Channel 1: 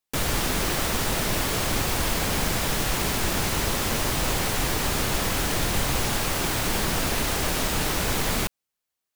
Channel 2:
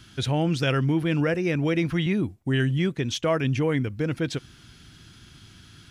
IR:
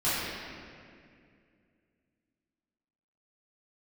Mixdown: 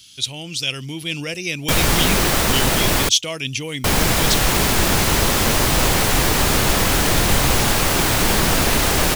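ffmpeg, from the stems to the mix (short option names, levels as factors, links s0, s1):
-filter_complex "[0:a]adelay=1550,volume=1.26,asplit=3[s0][s1][s2];[s0]atrim=end=3.09,asetpts=PTS-STARTPTS,afade=t=out:st=3.086:d=0.004:c=hsin[s3];[s1]atrim=start=3.09:end=3.84,asetpts=PTS-STARTPTS,volume=0[s4];[s2]atrim=start=3.84,asetpts=PTS-STARTPTS,afade=t=in:d=0.004:c=hsin[s5];[s3][s4][s5]concat=n=3:v=0:a=1[s6];[1:a]aexciter=amount=13:drive=2.6:freq=2400,volume=0.266[s7];[s6][s7]amix=inputs=2:normalize=0,dynaudnorm=f=100:g=17:m=2.24"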